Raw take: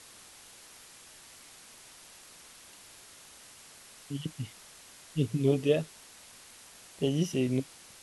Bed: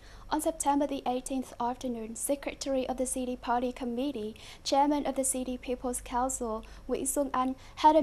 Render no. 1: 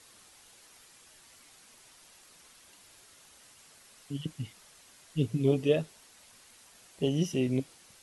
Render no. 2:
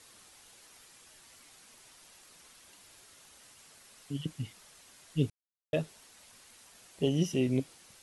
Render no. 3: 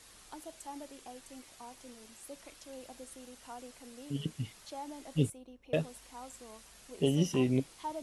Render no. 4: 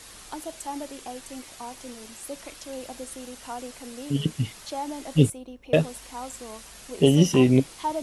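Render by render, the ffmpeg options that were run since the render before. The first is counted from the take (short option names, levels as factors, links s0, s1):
-af "afftdn=nr=6:nf=-53"
-filter_complex "[0:a]asplit=3[s0][s1][s2];[s0]atrim=end=5.3,asetpts=PTS-STARTPTS,afade=t=out:st=5.296:d=0.004:c=hsin[s3];[s1]atrim=start=5.3:end=5.73,asetpts=PTS-STARTPTS,volume=0[s4];[s2]atrim=start=5.73,asetpts=PTS-STARTPTS,afade=t=in:d=0.004:c=hsin[s5];[s3][s4][s5]concat=n=3:v=0:a=1"
-filter_complex "[1:a]volume=0.126[s0];[0:a][s0]amix=inputs=2:normalize=0"
-af "volume=3.55"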